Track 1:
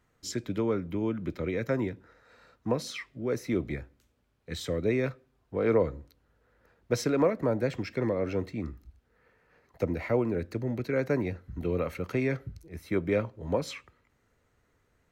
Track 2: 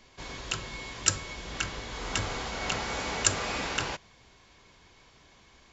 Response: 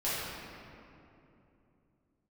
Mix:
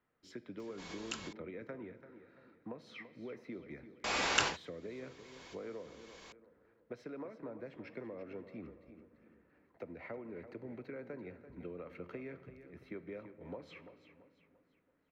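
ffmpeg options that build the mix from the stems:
-filter_complex "[0:a]acrossover=split=170 3500:gain=0.251 1 0.0794[link_01][link_02][link_03];[link_01][link_02][link_03]amix=inputs=3:normalize=0,acompressor=threshold=-33dB:ratio=12,volume=-9.5dB,asplit=4[link_04][link_05][link_06][link_07];[link_05]volume=-21.5dB[link_08];[link_06]volume=-11.5dB[link_09];[1:a]lowshelf=frequency=200:gain=-12,acompressor=mode=upward:threshold=-47dB:ratio=2.5,adelay=600,volume=1.5dB,asplit=3[link_10][link_11][link_12];[link_10]atrim=end=1.33,asetpts=PTS-STARTPTS,afade=type=out:start_time=1.326:duration=0.004:curve=hsin[link_13];[link_11]atrim=start=1.33:end=4.04,asetpts=PTS-STARTPTS,volume=0[link_14];[link_12]atrim=start=4.04,asetpts=PTS-STARTPTS,afade=type=in:duration=0.004:curve=hsin[link_15];[link_13][link_14][link_15]concat=n=3:v=0:a=1[link_16];[link_07]apad=whole_len=278781[link_17];[link_16][link_17]sidechaincompress=threshold=-52dB:ratio=12:attack=6.4:release=664[link_18];[2:a]atrim=start_sample=2205[link_19];[link_08][link_19]afir=irnorm=-1:irlink=0[link_20];[link_09]aecho=0:1:338|676|1014|1352|1690|2028:1|0.41|0.168|0.0689|0.0283|0.0116[link_21];[link_04][link_18][link_20][link_21]amix=inputs=4:normalize=0"

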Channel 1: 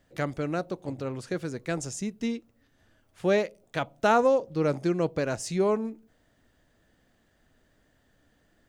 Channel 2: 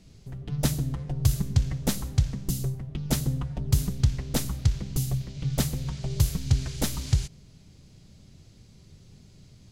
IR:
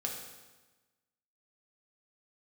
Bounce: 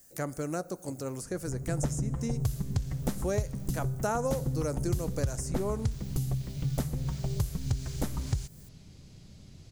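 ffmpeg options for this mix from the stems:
-filter_complex "[0:a]highshelf=frequency=4700:gain=7.5,aexciter=amount=7.4:drive=6.4:freq=5100,volume=-4dB,asplit=2[link_01][link_02];[link_02]volume=-19dB[link_03];[1:a]adelay=1200,volume=1dB[link_04];[2:a]atrim=start_sample=2205[link_05];[link_03][link_05]afir=irnorm=-1:irlink=0[link_06];[link_01][link_04][link_06]amix=inputs=3:normalize=0,acrossover=split=1800|5200[link_07][link_08][link_09];[link_07]acompressor=threshold=-27dB:ratio=4[link_10];[link_08]acompressor=threshold=-58dB:ratio=4[link_11];[link_09]acompressor=threshold=-46dB:ratio=4[link_12];[link_10][link_11][link_12]amix=inputs=3:normalize=0"

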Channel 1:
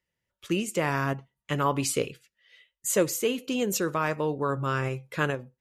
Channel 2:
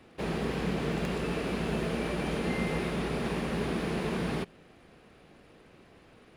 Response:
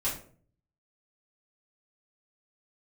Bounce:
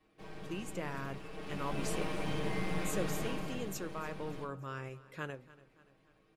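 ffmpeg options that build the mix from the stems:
-filter_complex "[0:a]volume=-14.5dB,asplit=2[link_01][link_02];[link_02]volume=-19dB[link_03];[1:a]aecho=1:1:6.4:0.89,aeval=exprs='clip(val(0),-1,0.0168)':channel_layout=same,volume=-11.5dB,afade=type=in:start_time=1.31:duration=0.64:silence=0.298538,afade=type=out:start_time=3.18:duration=0.54:silence=0.298538,asplit=2[link_04][link_05];[link_05]volume=-3dB[link_06];[2:a]atrim=start_sample=2205[link_07];[link_06][link_07]afir=irnorm=-1:irlink=0[link_08];[link_03]aecho=0:1:289|578|867|1156|1445|1734|2023:1|0.49|0.24|0.118|0.0576|0.0282|0.0138[link_09];[link_01][link_04][link_08][link_09]amix=inputs=4:normalize=0"

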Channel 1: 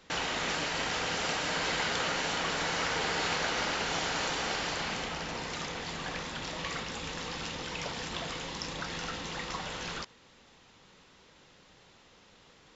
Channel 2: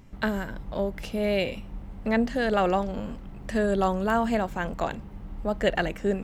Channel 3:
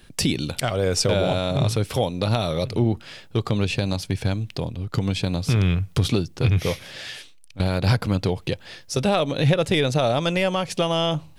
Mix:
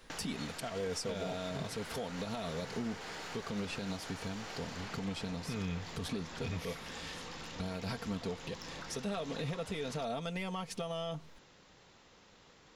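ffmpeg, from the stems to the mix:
ffmpeg -i stem1.wav -i stem2.wav -i stem3.wav -filter_complex "[0:a]asoftclip=type=tanh:threshold=-29.5dB,acompressor=threshold=-41dB:ratio=6,volume=-1.5dB[link_01];[2:a]aecho=1:1:4.4:0.71,volume=-12.5dB[link_02];[link_01][link_02]amix=inputs=2:normalize=0,equalizer=frequency=3000:width=1.5:gain=-2.5,alimiter=level_in=4.5dB:limit=-24dB:level=0:latency=1:release=172,volume=-4.5dB" out.wav

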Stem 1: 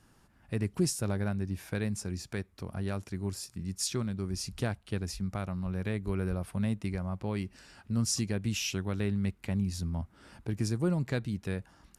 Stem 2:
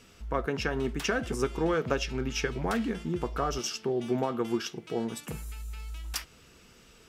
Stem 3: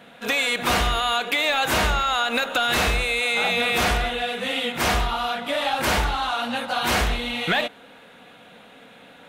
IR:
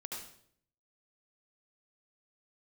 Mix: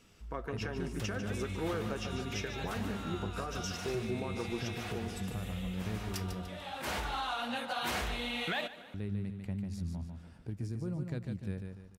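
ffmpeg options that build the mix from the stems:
-filter_complex "[0:a]deesser=0.8,lowshelf=frequency=420:gain=8,alimiter=limit=-18dB:level=0:latency=1:release=129,volume=-12dB,asplit=3[link_01][link_02][link_03];[link_01]atrim=end=6.46,asetpts=PTS-STARTPTS,afade=type=out:start_time=6.456:duration=0.004:curve=hsin[link_04];[link_02]atrim=start=6.46:end=8.94,asetpts=PTS-STARTPTS,volume=0[link_05];[link_03]atrim=start=8.94,asetpts=PTS-STARTPTS,afade=type=in:duration=0.004:curve=hsin[link_06];[link_04][link_05][link_06]concat=n=3:v=0:a=1,asplit=3[link_07][link_08][link_09];[link_08]volume=-5.5dB[link_10];[1:a]flanger=delay=0.3:depth=9.1:regen=-86:speed=0.25:shape=sinusoidal,volume=-3dB,asplit=2[link_11][link_12];[link_12]volume=-9.5dB[link_13];[2:a]highpass=frequency=50:width=0.5412,highpass=frequency=50:width=1.3066,adelay=1000,volume=-8.5dB,asplit=2[link_14][link_15];[link_15]volume=-19dB[link_16];[link_09]apad=whole_len=453682[link_17];[link_14][link_17]sidechaincompress=threshold=-53dB:ratio=8:attack=5.5:release=615[link_18];[link_10][link_13][link_16]amix=inputs=3:normalize=0,aecho=0:1:147|294|441|588|735:1|0.38|0.144|0.0549|0.0209[link_19];[link_07][link_11][link_18][link_19]amix=inputs=4:normalize=0,alimiter=level_in=1.5dB:limit=-24dB:level=0:latency=1:release=227,volume=-1.5dB"

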